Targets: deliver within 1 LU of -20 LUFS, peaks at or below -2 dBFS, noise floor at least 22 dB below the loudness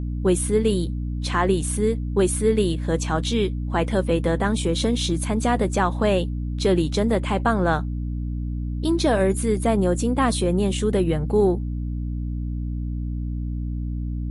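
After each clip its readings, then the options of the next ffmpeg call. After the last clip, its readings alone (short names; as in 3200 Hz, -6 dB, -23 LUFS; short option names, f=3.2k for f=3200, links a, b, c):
hum 60 Hz; harmonics up to 300 Hz; hum level -24 dBFS; loudness -23.0 LUFS; peak -8.0 dBFS; loudness target -20.0 LUFS
-> -af "bandreject=f=60:t=h:w=6,bandreject=f=120:t=h:w=6,bandreject=f=180:t=h:w=6,bandreject=f=240:t=h:w=6,bandreject=f=300:t=h:w=6"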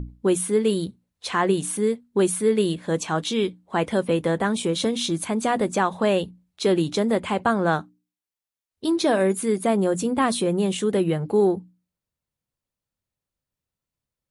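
hum none; loudness -23.0 LUFS; peak -9.5 dBFS; loudness target -20.0 LUFS
-> -af "volume=3dB"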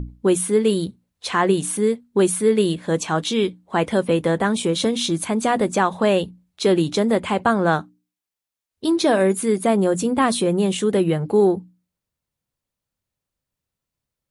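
loudness -20.0 LUFS; peak -6.5 dBFS; noise floor -86 dBFS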